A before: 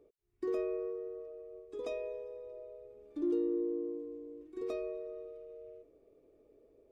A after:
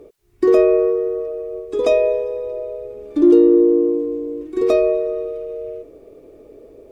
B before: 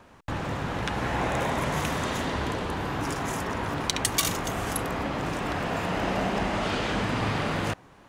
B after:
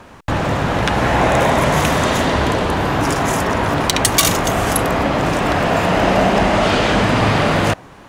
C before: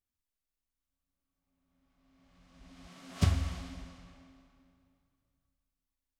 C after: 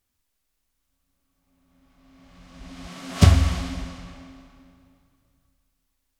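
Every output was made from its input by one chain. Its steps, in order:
dynamic equaliser 630 Hz, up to +4 dB, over −45 dBFS, Q 3.5
sine wavefolder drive 7 dB, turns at −4.5 dBFS
normalise the peak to −2 dBFS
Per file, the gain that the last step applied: +10.5, +1.5, +3.0 decibels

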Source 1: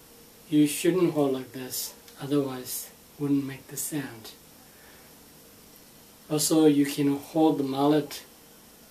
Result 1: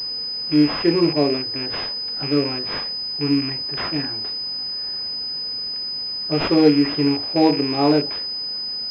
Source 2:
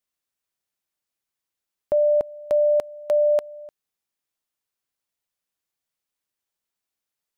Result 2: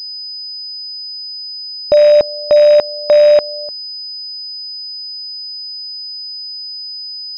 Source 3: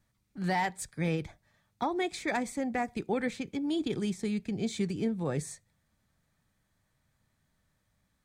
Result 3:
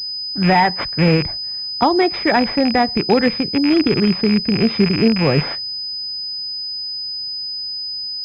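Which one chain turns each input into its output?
loose part that buzzes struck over −37 dBFS, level −26 dBFS
switching amplifier with a slow clock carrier 5,000 Hz
normalise the peak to −3 dBFS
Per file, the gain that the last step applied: +5.5, +11.0, +16.0 decibels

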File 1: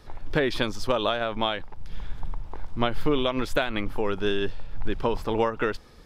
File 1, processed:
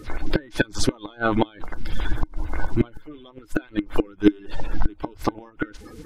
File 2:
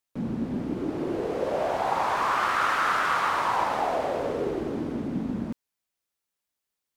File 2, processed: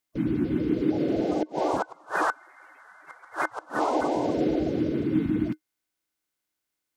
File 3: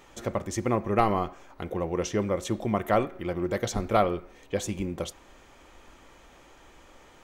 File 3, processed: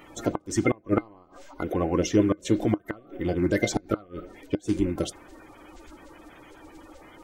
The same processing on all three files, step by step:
spectral magnitudes quantised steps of 30 dB
gate with flip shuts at −16 dBFS, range −30 dB
hollow resonant body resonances 310/1,500/2,100 Hz, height 11 dB, ringing for 85 ms
loudness normalisation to −27 LKFS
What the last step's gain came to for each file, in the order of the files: +8.5, +1.5, +3.5 decibels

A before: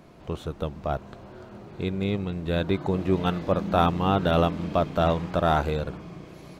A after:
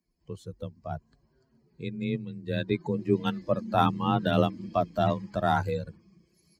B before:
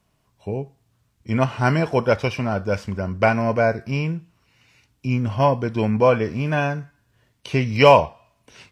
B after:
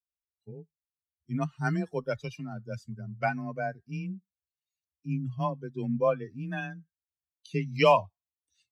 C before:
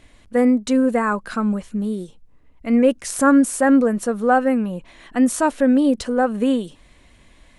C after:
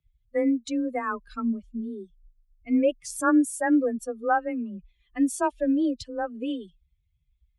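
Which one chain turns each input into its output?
spectral dynamics exaggerated over time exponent 2
frequency shifter +22 Hz
normalise the peak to −9 dBFS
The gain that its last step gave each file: +1.0, −6.5, −4.0 decibels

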